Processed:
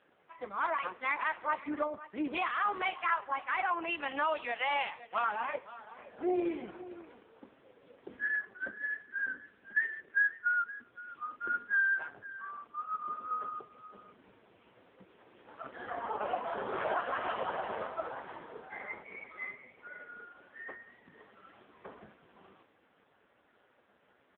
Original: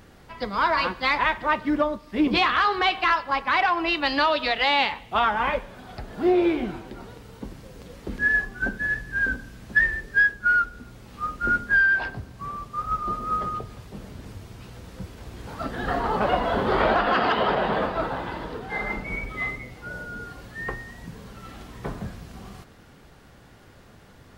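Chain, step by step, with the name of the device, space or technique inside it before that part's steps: satellite phone (band-pass 350–3400 Hz; delay 518 ms -16.5 dB; trim -8.5 dB; AMR-NB 4.75 kbps 8 kHz)

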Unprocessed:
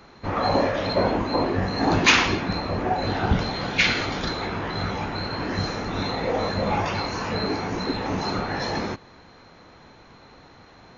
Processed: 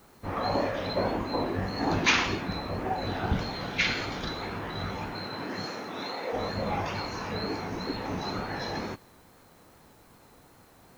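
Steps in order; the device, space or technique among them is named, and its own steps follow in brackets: 5.13–6.32 s: high-pass 110 Hz -> 400 Hz 12 dB/octave; plain cassette with noise reduction switched in (tape noise reduction on one side only decoder only; wow and flutter; white noise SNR 32 dB); trim -6.5 dB

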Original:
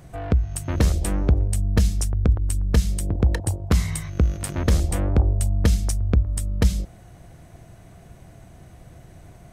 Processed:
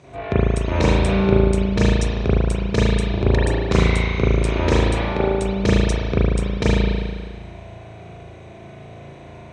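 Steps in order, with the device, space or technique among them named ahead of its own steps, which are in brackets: car door speaker (cabinet simulation 81–8300 Hz, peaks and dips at 390 Hz +9 dB, 610 Hz +6 dB, 980 Hz +6 dB, 2.4 kHz +10 dB, 3.8 kHz +9 dB, 6 kHz +4 dB); 4.85–5.40 s: bass shelf 220 Hz -10.5 dB; spring tank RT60 1.7 s, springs 36 ms, chirp 65 ms, DRR -9.5 dB; trim -4 dB

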